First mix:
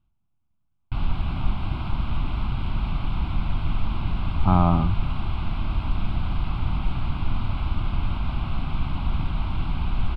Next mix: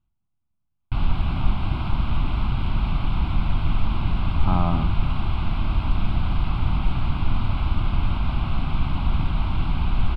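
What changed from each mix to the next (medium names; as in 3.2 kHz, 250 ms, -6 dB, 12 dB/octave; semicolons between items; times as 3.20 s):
speech -4.0 dB; background +3.0 dB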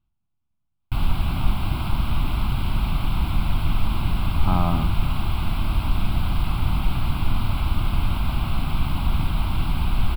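master: remove distance through air 150 m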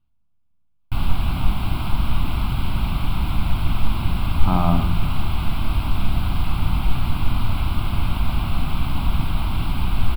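reverb: on, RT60 0.70 s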